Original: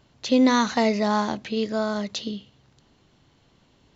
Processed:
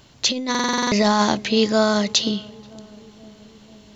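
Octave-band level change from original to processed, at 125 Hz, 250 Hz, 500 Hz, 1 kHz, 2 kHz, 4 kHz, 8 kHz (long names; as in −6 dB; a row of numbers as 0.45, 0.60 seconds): +6.5 dB, +1.5 dB, +3.5 dB, +3.5 dB, +5.5 dB, +10.0 dB, can't be measured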